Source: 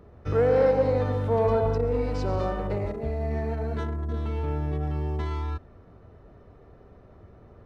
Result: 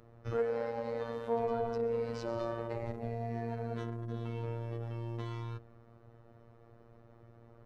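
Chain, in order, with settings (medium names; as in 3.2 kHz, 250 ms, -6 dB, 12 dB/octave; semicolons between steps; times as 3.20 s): hum notches 50/100/150/200/250/300/350/400/450 Hz; compression, threshold -23 dBFS, peak gain reduction 6 dB; robot voice 116 Hz; trim -4 dB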